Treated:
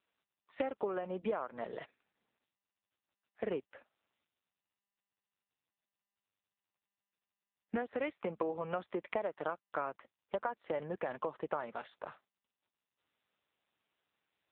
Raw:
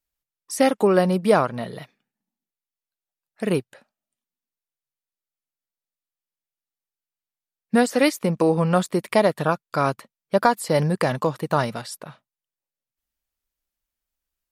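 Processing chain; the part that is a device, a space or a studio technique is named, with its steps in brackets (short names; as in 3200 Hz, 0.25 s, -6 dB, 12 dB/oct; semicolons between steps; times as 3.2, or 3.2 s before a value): voicemail (BPF 360–3000 Hz; compressor 10:1, threshold -30 dBFS, peak gain reduction 18 dB; gain -2 dB; AMR-NB 6.7 kbps 8000 Hz)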